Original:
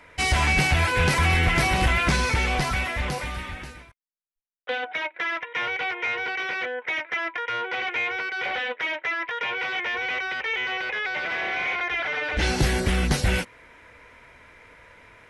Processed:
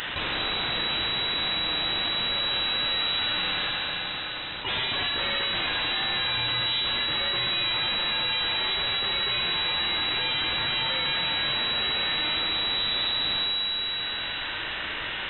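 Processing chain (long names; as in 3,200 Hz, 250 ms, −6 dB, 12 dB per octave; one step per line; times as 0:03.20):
high-pass filter 130 Hz 12 dB per octave
high-shelf EQ 2,600 Hz +10.5 dB
hum removal 194.9 Hz, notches 29
flanger 1.7 Hz, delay 9.7 ms, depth 1.7 ms, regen +72%
bit-depth reduction 10 bits, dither triangular
asymmetric clip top −33.5 dBFS, bottom −17 dBFS
pitch-shifted copies added −12 semitones −2 dB, +4 semitones −5 dB, +12 semitones −3 dB
wave folding −27.5 dBFS
four-comb reverb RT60 2.3 s, combs from 32 ms, DRR 2 dB
voice inversion scrambler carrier 3,900 Hz
envelope flattener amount 70%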